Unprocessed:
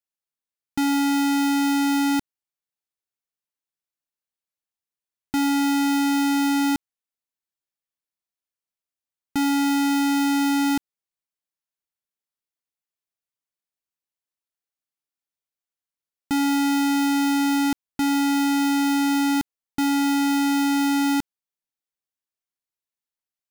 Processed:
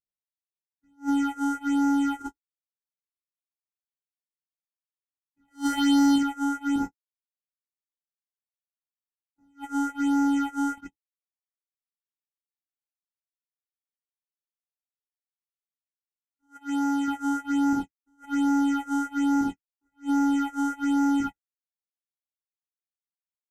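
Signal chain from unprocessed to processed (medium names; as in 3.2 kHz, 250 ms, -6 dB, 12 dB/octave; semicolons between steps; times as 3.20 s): CVSD coder 64 kbps; upward compressor, threshold -25 dBFS; gated-style reverb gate 120 ms flat, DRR -5.5 dB; 5.48–6.16 s: waveshaping leveller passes 3; 16.35–17.08 s: bass shelf 260 Hz -6.5 dB; early reflections 22 ms -3.5 dB, 42 ms -11 dB, 53 ms -9.5 dB, 69 ms -3.5 dB; phase shifter stages 6, 1.2 Hz, lowest notch 160–3100 Hz; gate -19 dBFS, range -48 dB; attacks held to a fixed rise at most 320 dB/s; trim -8.5 dB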